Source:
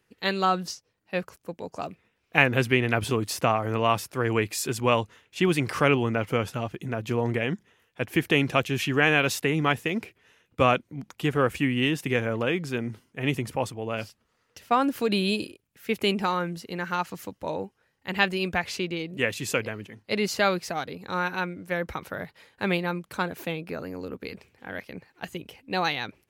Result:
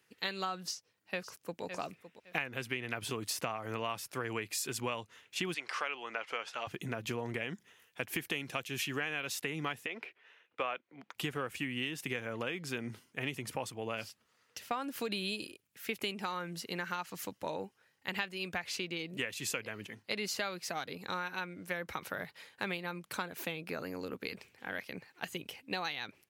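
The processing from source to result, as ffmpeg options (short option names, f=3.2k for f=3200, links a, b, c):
-filter_complex "[0:a]asplit=2[a][b];[b]afade=t=in:st=0.63:d=0.01,afade=t=out:st=1.63:d=0.01,aecho=0:1:560|1120:0.199526|0.0399052[c];[a][c]amix=inputs=2:normalize=0,asettb=1/sr,asplit=3[d][e][f];[d]atrim=end=5.544[g];[e]atrim=start=5.54:end=6.67,asetpts=PTS-STARTPTS,afade=t=in:d=0.004:c=qsin,afade=t=out:st=1.126:d=0.004:c=qsin,highpass=640,lowpass=5.4k[h];[f]atrim=start=6.666[i];[g][h]acrossfade=d=0.004:c1=hsin:c2=qsin[j];[j][i]acrossfade=d=0.004:c1=qsin:c2=hsin,asettb=1/sr,asplit=3[k][l][m];[k]atrim=end=7.494[n];[l]atrim=start=7.49:end=8.99,asetpts=PTS-STARTPTS,afade=t=in:d=0.004:c=qsin,afade=t=out:st=1.496:d=0.004:c=qsin,highshelf=f=6.6k:g=5[o];[m]atrim=start=8.986[p];[n][o]acrossfade=d=0.004:c1=hsin:c2=qsin[q];[q][p]acrossfade=d=0.004:c1=qsin:c2=hsin,asettb=1/sr,asplit=3[r][s][t];[r]atrim=end=9.864[u];[s]atrim=start=9.86:end=11.15,asetpts=PTS-STARTPTS,afade=t=in:d=0.004:c=qsin,afade=t=out:st=1.286:d=0.004:c=qsin,acrossover=split=350 3600:gain=0.112 1 0.1[v][w][x];[v][w][x]amix=inputs=3:normalize=0[y];[t]atrim=start=11.146[z];[u][y]acrossfade=d=0.004:c1=hsin:c2=qsin[aa];[aa][z]acrossfade=d=0.004:c1=qsin:c2=hsin,highpass=100,tiltshelf=f=1.1k:g=-4,acompressor=threshold=-32dB:ratio=6,volume=-1.5dB"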